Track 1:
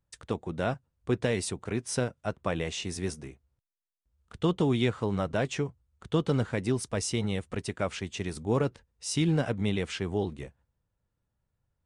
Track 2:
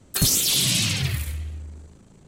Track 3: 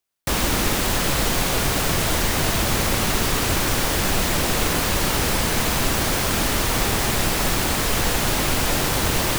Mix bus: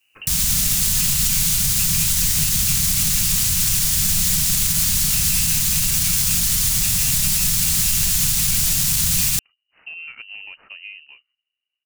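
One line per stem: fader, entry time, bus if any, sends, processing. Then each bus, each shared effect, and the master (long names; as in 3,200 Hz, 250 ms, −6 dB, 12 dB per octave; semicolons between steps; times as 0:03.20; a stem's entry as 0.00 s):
−6.0 dB, 0.70 s, bus A, no send, running median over 15 samples
−12.0 dB, 0.00 s, bus A, no send, shaped tremolo triangle 2 Hz, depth 75%
+0.5 dB, 0.00 s, no bus, no send, drawn EQ curve 110 Hz 0 dB, 170 Hz +4 dB, 350 Hz −29 dB, 7,000 Hz +10 dB
bus A: 0.0 dB, voice inversion scrambler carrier 2,900 Hz; downward compressor, threshold −32 dBFS, peak gain reduction 5.5 dB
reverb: not used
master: brickwall limiter −8 dBFS, peak gain reduction 4.5 dB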